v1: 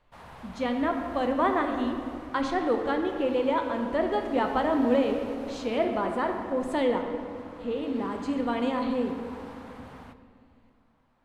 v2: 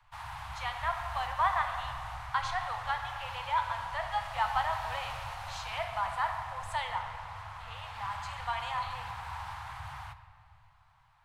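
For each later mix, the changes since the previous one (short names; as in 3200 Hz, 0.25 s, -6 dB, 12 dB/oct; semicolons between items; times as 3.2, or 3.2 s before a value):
background +6.5 dB; master: add elliptic band-stop 120–830 Hz, stop band 80 dB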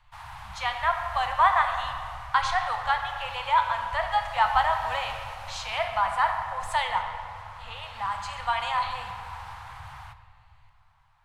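speech +8.0 dB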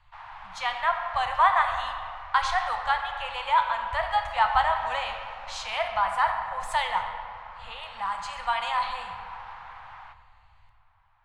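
background: add BPF 320–2800 Hz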